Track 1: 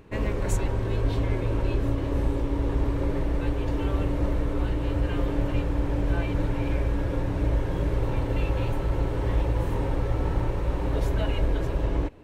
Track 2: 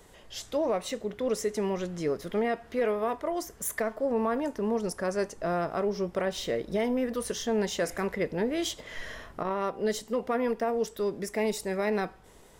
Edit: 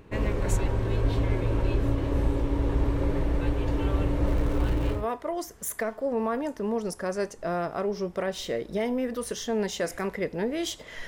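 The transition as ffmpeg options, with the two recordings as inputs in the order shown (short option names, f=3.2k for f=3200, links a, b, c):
-filter_complex "[0:a]asettb=1/sr,asplit=3[a][b][c];[a]atrim=end=4.264[d];[b]atrim=start=4.26:end=5.07,asetpts=PTS-STARTPTS,afade=t=in:d=0.004:c=qsin,afade=t=out:st=0.806:d=0.004:c=qsin,aeval=exprs='val(0)+0.5*0.0141*sgn(val(0))':c=same[e];[c]atrim=start=5.066[f];[d][e]acrossfade=d=0.004:c1=hsin:c2=qsin[g];[g][f]acrossfade=d=0.004:c1=qsin:c2=hsin,apad=whole_dur=11.07,atrim=end=11.07,atrim=end=5.07,asetpts=PTS-STARTPTS[h];[1:a]atrim=start=2.86:end=9.06,asetpts=PTS-STARTPTS[i];[h][i]acrossfade=d=0.2:c1=tri:c2=tri"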